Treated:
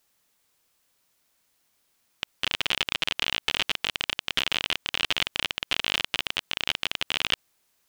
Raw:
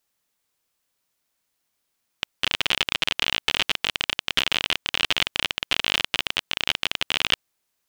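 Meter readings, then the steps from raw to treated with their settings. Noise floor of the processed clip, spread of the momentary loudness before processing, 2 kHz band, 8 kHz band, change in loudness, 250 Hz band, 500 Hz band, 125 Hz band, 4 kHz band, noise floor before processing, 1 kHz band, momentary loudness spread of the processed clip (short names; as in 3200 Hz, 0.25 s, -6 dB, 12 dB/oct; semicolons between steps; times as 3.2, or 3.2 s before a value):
-75 dBFS, 4 LU, -3.5 dB, -3.5 dB, -3.5 dB, -3.5 dB, -3.5 dB, -3.5 dB, -3.5 dB, -77 dBFS, -3.5 dB, 4 LU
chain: limiter -13.5 dBFS, peak gain reduction 11 dB; gain +6 dB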